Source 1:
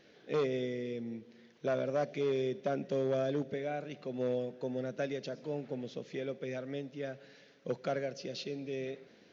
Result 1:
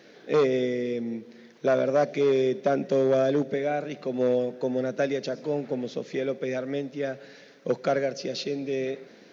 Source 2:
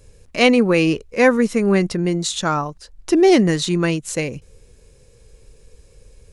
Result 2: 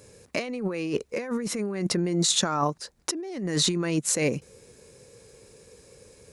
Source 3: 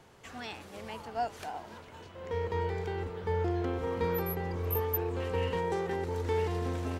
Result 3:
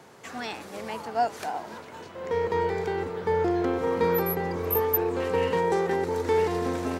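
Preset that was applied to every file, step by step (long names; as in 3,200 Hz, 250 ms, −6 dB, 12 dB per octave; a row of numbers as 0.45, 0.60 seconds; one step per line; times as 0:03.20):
high-pass filter 160 Hz 12 dB per octave
parametric band 3,000 Hz −4.5 dB 0.5 octaves
compressor whose output falls as the input rises −25 dBFS, ratio −1
loudness normalisation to −27 LKFS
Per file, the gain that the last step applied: +10.0, −3.0, +8.0 decibels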